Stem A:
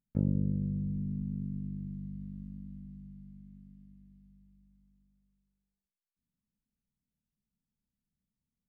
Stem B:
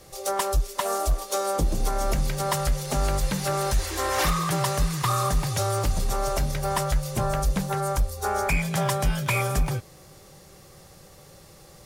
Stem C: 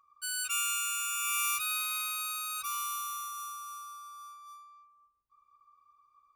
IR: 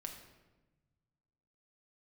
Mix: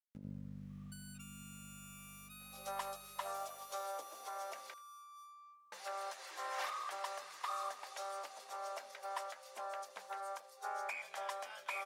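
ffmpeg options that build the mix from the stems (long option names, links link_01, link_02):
-filter_complex "[0:a]aeval=exprs='val(0)*gte(abs(val(0)),0.00473)':channel_layout=same,volume=-9.5dB,asplit=2[link_01][link_02];[link_02]volume=-13dB[link_03];[1:a]highpass=frequency=630:width=0.5412,highpass=frequency=630:width=1.3066,aemphasis=mode=reproduction:type=50kf,adelay=2400,volume=-13.5dB,asplit=3[link_04][link_05][link_06];[link_04]atrim=end=4.74,asetpts=PTS-STARTPTS,afade=type=out:start_time=4.736:duration=0.004:curve=hsin[link_07];[link_05]atrim=start=4.74:end=5.72,asetpts=PTS-STARTPTS,volume=0[link_08];[link_06]atrim=start=5.72,asetpts=PTS-STARTPTS,afade=type=in:duration=0.004:curve=hsin[link_09];[link_07][link_08][link_09]concat=n=3:v=0:a=1,asplit=2[link_10][link_11];[link_11]volume=-22dB[link_12];[2:a]acompressor=threshold=-42dB:ratio=6,adelay=700,volume=-1dB[link_13];[link_01][link_13]amix=inputs=2:normalize=0,lowshelf=frequency=490:gain=-7.5,acompressor=threshold=-54dB:ratio=5,volume=0dB[link_14];[link_03][link_12]amix=inputs=2:normalize=0,aecho=0:1:80|160|240:1|0.18|0.0324[link_15];[link_10][link_14][link_15]amix=inputs=3:normalize=0,equalizer=frequency=230:width=1.8:gain=7"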